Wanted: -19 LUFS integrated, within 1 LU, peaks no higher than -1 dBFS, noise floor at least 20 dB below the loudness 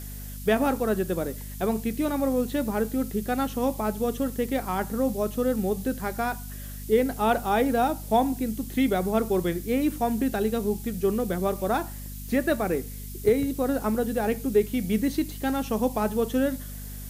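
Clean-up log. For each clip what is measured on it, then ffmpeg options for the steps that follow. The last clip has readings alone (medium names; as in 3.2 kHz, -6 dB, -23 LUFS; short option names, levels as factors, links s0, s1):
hum 50 Hz; highest harmonic 250 Hz; hum level -35 dBFS; noise floor -37 dBFS; noise floor target -47 dBFS; loudness -26.5 LUFS; peak level -10.0 dBFS; loudness target -19.0 LUFS
-> -af "bandreject=f=50:t=h:w=4,bandreject=f=100:t=h:w=4,bandreject=f=150:t=h:w=4,bandreject=f=200:t=h:w=4,bandreject=f=250:t=h:w=4"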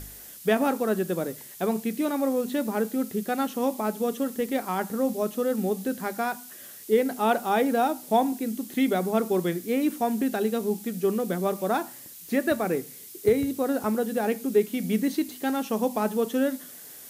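hum not found; noise floor -45 dBFS; noise floor target -47 dBFS
-> -af "afftdn=nr=6:nf=-45"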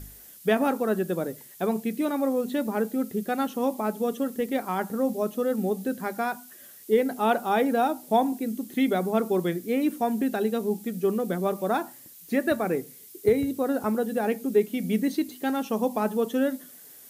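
noise floor -49 dBFS; loudness -27.0 LUFS; peak level -10.5 dBFS; loudness target -19.0 LUFS
-> -af "volume=2.51"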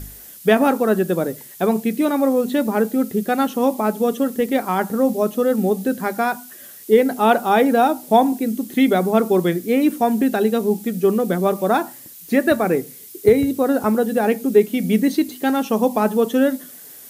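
loudness -19.0 LUFS; peak level -2.5 dBFS; noise floor -41 dBFS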